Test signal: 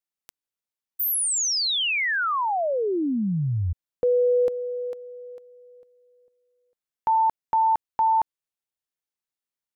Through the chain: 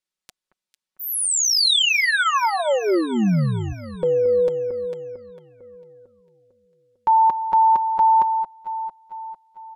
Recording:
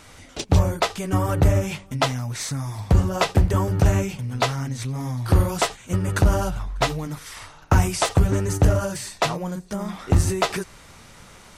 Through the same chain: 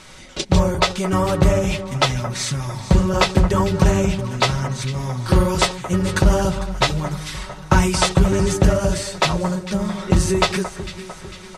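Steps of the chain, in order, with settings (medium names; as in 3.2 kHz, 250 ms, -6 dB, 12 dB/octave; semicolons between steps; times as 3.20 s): low-pass 10 kHz 12 dB/octave; peaking EQ 3.9 kHz +3 dB 0.85 oct; band-stop 730 Hz, Q 12; comb 5.4 ms, depth 58%; on a send: echo whose repeats swap between lows and highs 225 ms, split 1.7 kHz, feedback 71%, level -11 dB; on the sum: trim +3 dB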